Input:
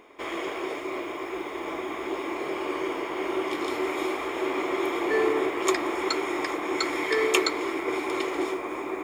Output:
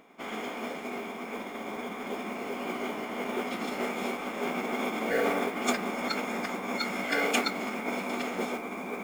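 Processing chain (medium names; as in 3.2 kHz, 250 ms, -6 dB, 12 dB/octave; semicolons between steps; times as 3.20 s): formant-preserving pitch shift -7.5 st; modulation noise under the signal 23 dB; trim -3 dB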